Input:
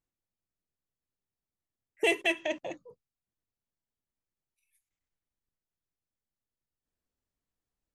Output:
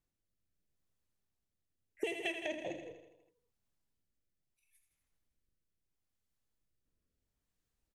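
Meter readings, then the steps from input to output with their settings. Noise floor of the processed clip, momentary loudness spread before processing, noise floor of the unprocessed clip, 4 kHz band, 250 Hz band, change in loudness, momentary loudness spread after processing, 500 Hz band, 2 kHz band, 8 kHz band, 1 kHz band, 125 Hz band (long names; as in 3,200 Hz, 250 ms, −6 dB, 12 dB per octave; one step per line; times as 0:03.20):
below −85 dBFS, 16 LU, below −85 dBFS, −9.5 dB, −7.0 dB, −10.0 dB, 14 LU, −8.0 dB, −10.5 dB, −10.0 dB, −9.5 dB, 0.0 dB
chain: low-shelf EQ 170 Hz +5 dB
on a send: repeating echo 81 ms, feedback 57%, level −10 dB
on the sum: downward compressor 20 to 1, threshold −36 dBFS, peak gain reduction 16.5 dB
rotating-speaker cabinet horn 0.75 Hz
dynamic equaliser 1,100 Hz, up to −6 dB, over −60 dBFS, Q 2
level +3.5 dB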